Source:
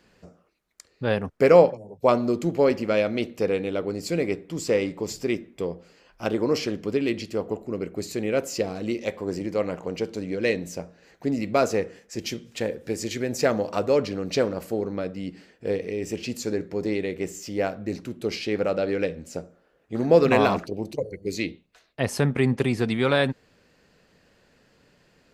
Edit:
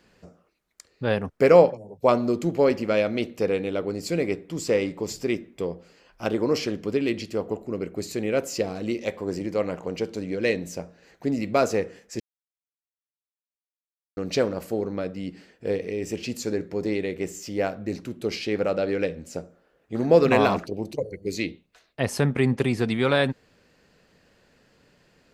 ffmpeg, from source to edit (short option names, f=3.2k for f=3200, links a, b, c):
-filter_complex "[0:a]asplit=3[a][b][c];[a]atrim=end=12.2,asetpts=PTS-STARTPTS,afade=t=out:st=12.196:d=0.004:c=hsin[d];[b]atrim=start=12.2:end=14.17,asetpts=PTS-STARTPTS,volume=0[e];[c]atrim=start=14.17,asetpts=PTS-STARTPTS,afade=t=in:d=0.004:c=hsin[f];[d][e][f]concat=n=3:v=0:a=1"